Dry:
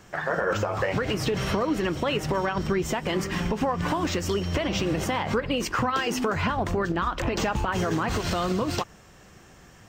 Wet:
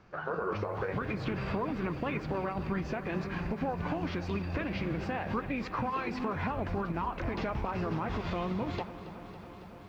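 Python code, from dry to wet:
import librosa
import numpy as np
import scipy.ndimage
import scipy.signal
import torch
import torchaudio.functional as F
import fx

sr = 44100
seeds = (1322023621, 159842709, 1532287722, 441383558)

p1 = scipy.signal.sosfilt(scipy.signal.butter(2, 3500.0, 'lowpass', fs=sr, output='sos'), x)
p2 = fx.formant_shift(p1, sr, semitones=-3)
p3 = p2 + fx.echo_single(p2, sr, ms=1139, db=-22.0, dry=0)
p4 = fx.echo_crushed(p3, sr, ms=277, feedback_pct=80, bits=9, wet_db=-14.5)
y = p4 * librosa.db_to_amplitude(-7.5)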